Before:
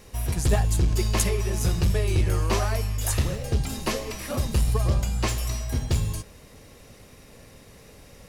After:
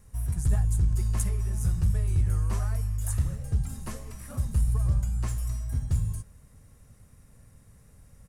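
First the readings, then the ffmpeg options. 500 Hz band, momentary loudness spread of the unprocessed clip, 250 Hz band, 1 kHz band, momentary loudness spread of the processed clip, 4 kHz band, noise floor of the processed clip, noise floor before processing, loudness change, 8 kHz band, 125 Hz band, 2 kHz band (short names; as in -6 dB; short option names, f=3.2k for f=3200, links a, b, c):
-16.5 dB, 6 LU, -8.0 dB, -13.0 dB, 8 LU, -18.5 dB, -56 dBFS, -50 dBFS, -3.0 dB, -8.5 dB, -2.0 dB, -14.5 dB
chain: -af "firequalizer=gain_entry='entry(110,0);entry(350,-16);entry(1400,-9);entry(2500,-18);entry(4400,-18);entry(8900,-3);entry(13000,-10)':delay=0.05:min_phase=1,volume=-1.5dB"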